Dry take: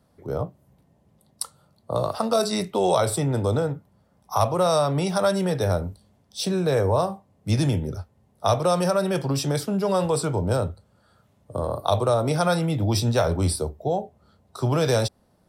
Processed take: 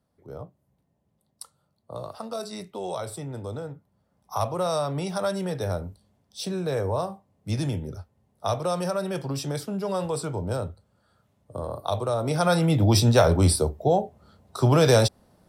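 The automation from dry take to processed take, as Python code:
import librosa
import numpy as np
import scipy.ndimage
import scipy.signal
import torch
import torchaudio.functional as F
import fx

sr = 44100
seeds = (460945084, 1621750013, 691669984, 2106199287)

y = fx.gain(x, sr, db=fx.line((3.56, -11.5), (4.36, -5.5), (12.1, -5.5), (12.72, 3.5)))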